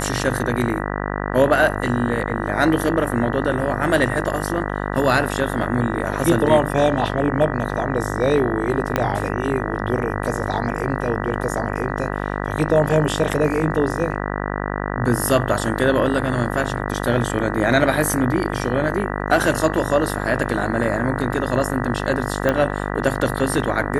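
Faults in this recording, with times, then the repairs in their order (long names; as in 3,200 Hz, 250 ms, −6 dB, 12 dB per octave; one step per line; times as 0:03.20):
mains buzz 50 Hz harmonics 39 −25 dBFS
0:08.96: click −5 dBFS
0:22.49: click −6 dBFS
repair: click removal
hum removal 50 Hz, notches 39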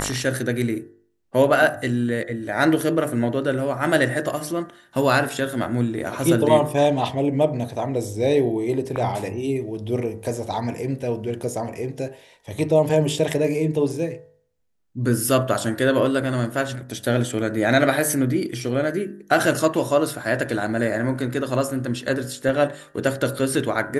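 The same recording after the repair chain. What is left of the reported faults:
0:08.96: click
0:22.49: click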